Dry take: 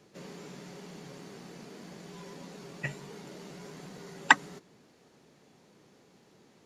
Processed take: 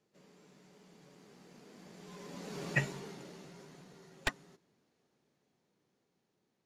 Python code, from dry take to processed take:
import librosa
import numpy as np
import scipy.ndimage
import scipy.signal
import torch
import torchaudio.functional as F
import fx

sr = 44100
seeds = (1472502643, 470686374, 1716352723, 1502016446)

y = np.minimum(x, 2.0 * 10.0 ** (-15.5 / 20.0) - x)
y = fx.doppler_pass(y, sr, speed_mps=10, closest_m=2.0, pass_at_s=2.7)
y = F.gain(torch.from_numpy(y), 5.5).numpy()